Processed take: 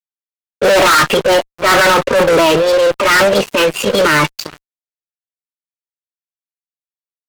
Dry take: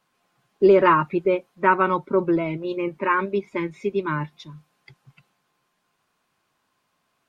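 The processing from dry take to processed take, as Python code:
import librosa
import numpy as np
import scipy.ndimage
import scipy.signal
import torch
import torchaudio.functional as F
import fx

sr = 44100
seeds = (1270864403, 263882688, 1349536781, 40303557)

y = scipy.signal.sosfilt(scipy.signal.butter(2, 360.0, 'highpass', fs=sr, output='sos'), x)
y = fx.transient(y, sr, attack_db=-10, sustain_db=9)
y = fx.formant_shift(y, sr, semitones=4)
y = fx.fuzz(y, sr, gain_db=33.0, gate_db=-42.0)
y = y * 10.0 ** (5.0 / 20.0)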